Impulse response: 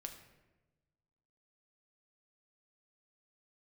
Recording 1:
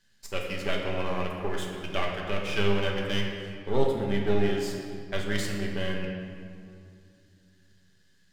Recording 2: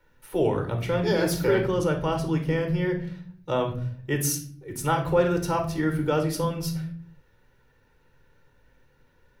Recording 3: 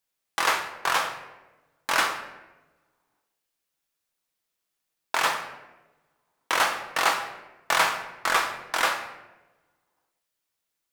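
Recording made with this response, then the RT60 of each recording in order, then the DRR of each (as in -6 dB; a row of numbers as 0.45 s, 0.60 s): 3; 2.4 s, 0.55 s, 1.1 s; -1.5 dB, 4.0 dB, 4.0 dB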